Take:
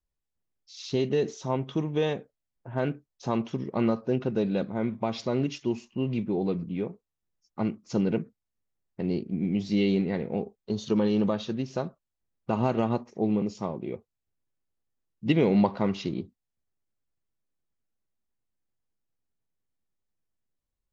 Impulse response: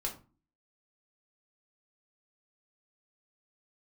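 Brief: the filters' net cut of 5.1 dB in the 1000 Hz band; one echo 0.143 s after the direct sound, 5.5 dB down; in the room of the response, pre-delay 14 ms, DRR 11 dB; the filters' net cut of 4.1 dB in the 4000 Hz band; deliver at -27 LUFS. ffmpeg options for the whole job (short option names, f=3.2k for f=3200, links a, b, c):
-filter_complex "[0:a]equalizer=f=1k:t=o:g=-6.5,equalizer=f=4k:t=o:g=-5,aecho=1:1:143:0.531,asplit=2[a][b];[1:a]atrim=start_sample=2205,adelay=14[c];[b][c]afir=irnorm=-1:irlink=0,volume=-13dB[d];[a][d]amix=inputs=2:normalize=0,volume=1dB"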